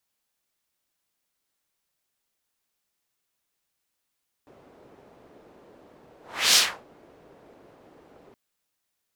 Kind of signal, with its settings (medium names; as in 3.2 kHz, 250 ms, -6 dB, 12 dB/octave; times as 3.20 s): whoosh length 3.87 s, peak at 2.08 s, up 0.36 s, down 0.31 s, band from 450 Hz, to 5.1 kHz, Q 1.2, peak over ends 36.5 dB